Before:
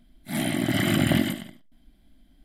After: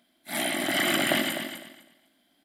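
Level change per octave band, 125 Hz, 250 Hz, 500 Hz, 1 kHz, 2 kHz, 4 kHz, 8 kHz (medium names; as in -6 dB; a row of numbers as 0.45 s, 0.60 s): -16.5 dB, -7.0 dB, +1.0 dB, +3.0 dB, +3.5 dB, +3.5 dB, +3.5 dB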